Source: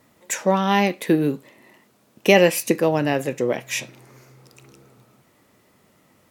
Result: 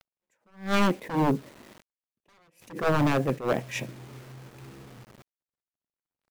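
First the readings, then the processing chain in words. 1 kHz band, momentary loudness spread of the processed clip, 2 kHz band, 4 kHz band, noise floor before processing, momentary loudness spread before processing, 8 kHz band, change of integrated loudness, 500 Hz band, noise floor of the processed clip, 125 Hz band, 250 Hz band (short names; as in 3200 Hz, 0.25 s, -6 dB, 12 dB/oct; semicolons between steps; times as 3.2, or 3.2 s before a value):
-6.0 dB, 21 LU, -9.0 dB, -10.0 dB, -60 dBFS, 12 LU, -15.5 dB, -6.5 dB, -10.0 dB, under -85 dBFS, -2.5 dB, -6.5 dB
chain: Wiener smoothing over 9 samples; tilt -2.5 dB/oct; wavefolder -14.5 dBFS; bit-crush 8-bit; attack slew limiter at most 170 dB/s; gain -1.5 dB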